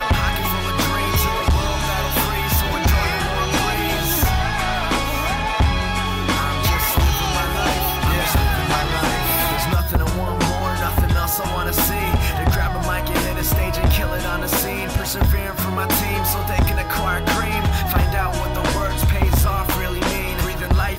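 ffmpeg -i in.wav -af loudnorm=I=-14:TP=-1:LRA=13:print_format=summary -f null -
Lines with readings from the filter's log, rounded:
Input Integrated:    -19.8 LUFS
Input True Peak:      -7.4 dBTP
Input LRA:             1.3 LU
Input Threshold:     -29.8 LUFS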